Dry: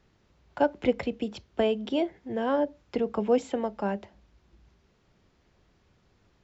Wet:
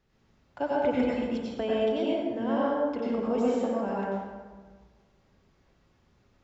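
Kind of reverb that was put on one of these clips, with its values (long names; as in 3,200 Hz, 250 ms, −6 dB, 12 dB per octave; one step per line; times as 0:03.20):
dense smooth reverb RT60 1.5 s, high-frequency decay 0.55×, pre-delay 80 ms, DRR −6.5 dB
level −7.5 dB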